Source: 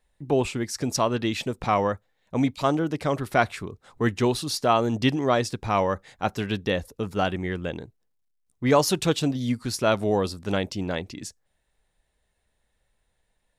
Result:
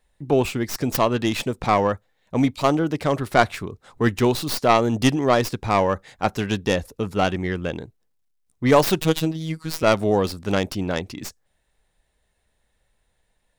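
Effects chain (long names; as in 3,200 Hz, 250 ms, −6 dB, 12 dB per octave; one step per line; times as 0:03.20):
stylus tracing distortion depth 0.18 ms
0:09.01–0:09.83: phases set to zero 160 Hz
level +3.5 dB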